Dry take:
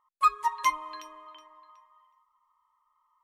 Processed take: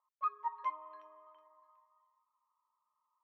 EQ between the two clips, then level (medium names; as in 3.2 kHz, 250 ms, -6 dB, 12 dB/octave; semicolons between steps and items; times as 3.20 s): ladder band-pass 700 Hz, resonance 35%; distance through air 71 m; +2.0 dB